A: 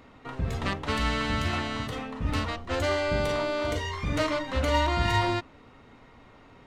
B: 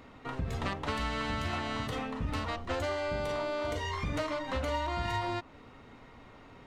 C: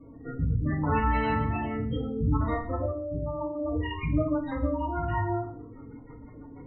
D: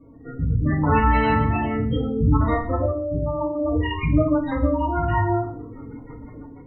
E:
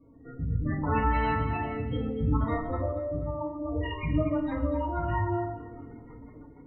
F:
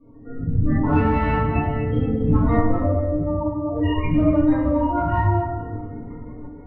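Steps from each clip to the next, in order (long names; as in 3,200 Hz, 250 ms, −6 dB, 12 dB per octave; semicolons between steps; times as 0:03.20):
dynamic equaliser 820 Hz, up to +4 dB, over −38 dBFS, Q 1.1; downward compressor, threshold −30 dBFS, peak gain reduction 12 dB
rotating-speaker cabinet horn 0.7 Hz, later 6.3 Hz, at 0:03.02; gate on every frequency bin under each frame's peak −10 dB strong; feedback delay network reverb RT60 0.52 s, low-frequency decay 1.55×, high-frequency decay 0.85×, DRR −4 dB; level +3 dB
automatic gain control gain up to 7.5 dB
delay that swaps between a low-pass and a high-pass 120 ms, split 880 Hz, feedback 58%, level −7 dB; level −8.5 dB
in parallel at −4 dB: hard clipping −22.5 dBFS, distortion −15 dB; on the sum: high-frequency loss of the air 220 metres; rectangular room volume 110 cubic metres, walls mixed, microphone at 1.7 metres; level −2.5 dB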